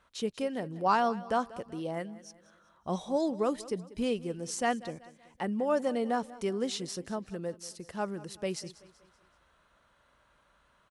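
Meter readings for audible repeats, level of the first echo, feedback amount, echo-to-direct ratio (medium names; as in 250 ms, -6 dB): 3, -18.5 dB, 44%, -17.5 dB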